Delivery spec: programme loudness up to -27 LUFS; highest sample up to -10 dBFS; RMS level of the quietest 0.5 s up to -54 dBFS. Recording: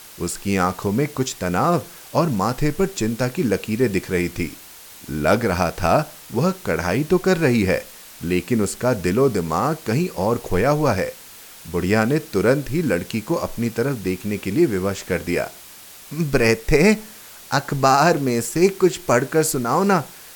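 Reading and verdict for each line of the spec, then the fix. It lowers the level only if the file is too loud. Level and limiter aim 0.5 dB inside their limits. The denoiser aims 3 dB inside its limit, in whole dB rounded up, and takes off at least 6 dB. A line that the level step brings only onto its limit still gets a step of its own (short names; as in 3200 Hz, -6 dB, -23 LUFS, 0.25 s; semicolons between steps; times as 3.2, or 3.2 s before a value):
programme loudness -20.5 LUFS: fail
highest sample -3.5 dBFS: fail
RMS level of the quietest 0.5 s -42 dBFS: fail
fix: denoiser 8 dB, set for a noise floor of -42 dBFS; gain -7 dB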